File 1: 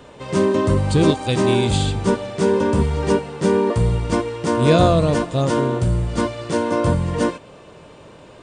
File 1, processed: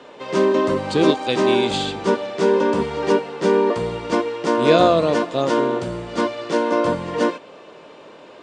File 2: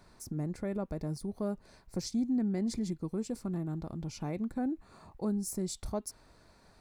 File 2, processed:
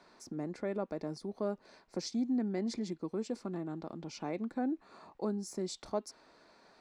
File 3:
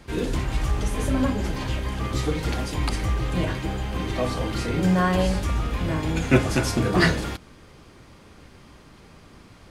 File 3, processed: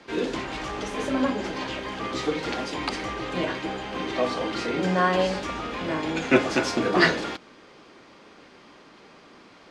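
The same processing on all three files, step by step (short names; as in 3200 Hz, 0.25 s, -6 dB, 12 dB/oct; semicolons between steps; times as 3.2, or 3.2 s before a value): three-band isolator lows -23 dB, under 220 Hz, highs -23 dB, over 6600 Hz; gain +2 dB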